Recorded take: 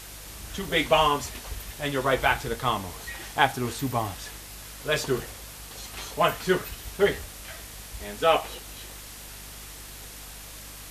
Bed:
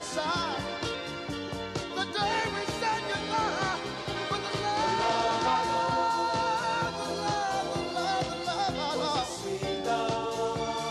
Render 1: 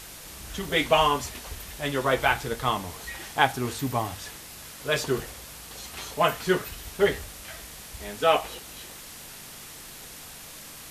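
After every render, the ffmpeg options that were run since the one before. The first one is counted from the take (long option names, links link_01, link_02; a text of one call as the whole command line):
ffmpeg -i in.wav -af "bandreject=frequency=50:width_type=h:width=4,bandreject=frequency=100:width_type=h:width=4" out.wav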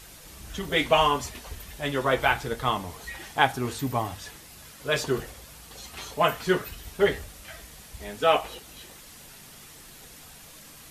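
ffmpeg -i in.wav -af "afftdn=noise_reduction=6:noise_floor=-44" out.wav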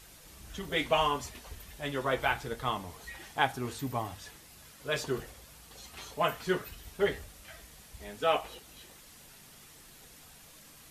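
ffmpeg -i in.wav -af "volume=-6.5dB" out.wav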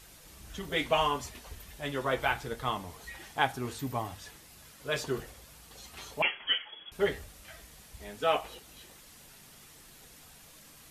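ffmpeg -i in.wav -filter_complex "[0:a]asettb=1/sr,asplit=3[link_01][link_02][link_03];[link_01]atrim=end=6.224[link_04];[link_02]atrim=start=6.22:end=6.92,asetpts=PTS-STARTPTS,afade=type=in:duration=0.004:curve=qsin,afade=type=out:start_time=0.696:duration=0.004:curve=qsin,lowpass=frequency=2900:width_type=q:width=0.5098,lowpass=frequency=2900:width_type=q:width=0.6013,lowpass=frequency=2900:width_type=q:width=0.9,lowpass=frequency=2900:width_type=q:width=2.563,afreqshift=-3400[link_05];[link_03]atrim=start=6.916[link_06];[link_04][link_05]acrossfade=duration=0.004:curve1=hsin:curve2=qsin[link_07];[link_07][link_06]acrossfade=duration=0.004:curve1=qsin:curve2=hsin" out.wav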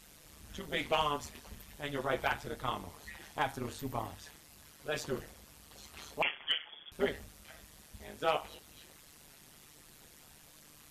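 ffmpeg -i in.wav -af "tremolo=f=150:d=0.857,volume=19.5dB,asoftclip=hard,volume=-19.5dB" out.wav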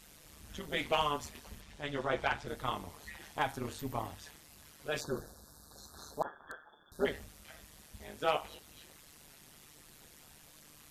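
ffmpeg -i in.wav -filter_complex "[0:a]asettb=1/sr,asplit=3[link_01][link_02][link_03];[link_01]atrim=end=1.604[link_04];[link_02]atrim=start=1.6:end=2.48,asetpts=PTS-STARTPTS,afade=type=in:duration=0.004:curve=qsin,afade=type=out:start_time=0.876:duration=0.004:curve=qsin,lowpass=6900[link_05];[link_03]atrim=start=2.476[link_06];[link_04][link_05]acrossfade=duration=0.004:curve1=hsin:curve2=qsin[link_07];[link_07][link_06]acrossfade=duration=0.004:curve1=qsin:curve2=hsin,asettb=1/sr,asplit=3[link_08][link_09][link_10];[link_08]atrim=end=5.014[link_11];[link_09]atrim=start=5.01:end=7.05,asetpts=PTS-STARTPTS,afade=type=in:duration=0.004:curve=qsin,afade=type=out:start_time=2.036:duration=0.004:curve=qsin,asuperstop=centerf=2500:order=20:qfactor=1.3[link_12];[link_10]atrim=start=7.046[link_13];[link_11][link_12]acrossfade=duration=0.004:curve1=hsin:curve2=qsin[link_14];[link_14][link_13]acrossfade=duration=0.004:curve1=qsin:curve2=hsin" out.wav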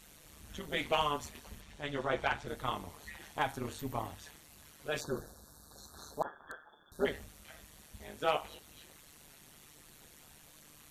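ffmpeg -i in.wav -af "bandreject=frequency=5000:width=11" out.wav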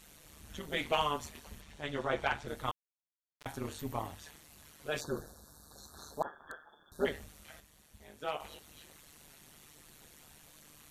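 ffmpeg -i in.wav -filter_complex "[0:a]asettb=1/sr,asplit=3[link_01][link_02][link_03];[link_01]atrim=end=2.714[link_04];[link_02]atrim=start=2.71:end=3.46,asetpts=PTS-STARTPTS,afade=type=in:duration=0.004:curve=qsin,afade=type=out:start_time=0.746:duration=0.004:curve=qsin,acrusher=bits=2:mix=0:aa=0.5[link_05];[link_03]atrim=start=3.456[link_06];[link_04][link_05]acrossfade=duration=0.004:curve1=hsin:curve2=qsin[link_07];[link_07][link_06]acrossfade=duration=0.004:curve1=qsin:curve2=hsin,asplit=3[link_08][link_09][link_10];[link_08]atrim=end=7.602[link_11];[link_09]atrim=start=7.598:end=8.402,asetpts=PTS-STARTPTS,volume=-6.5dB[link_12];[link_10]atrim=start=8.398[link_13];[link_11][link_12]acrossfade=duration=0.004:curve1=hsin:curve2=hsin[link_14];[link_14][link_13]acrossfade=duration=0.004:curve1=hsin:curve2=hsin" out.wav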